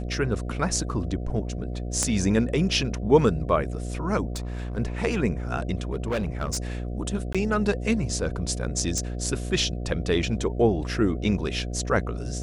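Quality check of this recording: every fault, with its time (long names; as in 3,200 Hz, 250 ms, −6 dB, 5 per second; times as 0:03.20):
mains buzz 60 Hz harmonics 12 −31 dBFS
0:02.03: click −11 dBFS
0:04.33–0:04.78: clipping −27.5 dBFS
0:05.93–0:06.58: clipping −22.5 dBFS
0:07.33–0:07.35: drop-out 16 ms
0:08.98: click −14 dBFS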